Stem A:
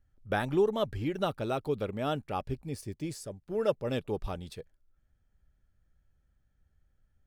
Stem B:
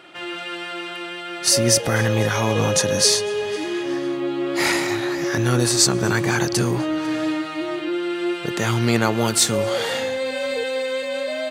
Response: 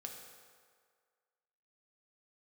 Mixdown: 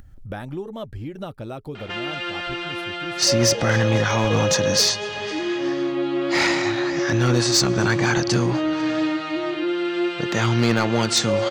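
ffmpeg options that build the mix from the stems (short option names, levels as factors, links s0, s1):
-filter_complex "[0:a]lowshelf=f=370:g=6,volume=0.398[s0];[1:a]lowpass=f=6400:w=0.5412,lowpass=f=6400:w=1.3066,volume=3.98,asoftclip=hard,volume=0.251,adelay=1750,volume=1.12[s1];[s0][s1]amix=inputs=2:normalize=0,bandreject=f=420:w=12,acompressor=mode=upward:threshold=0.0562:ratio=2.5"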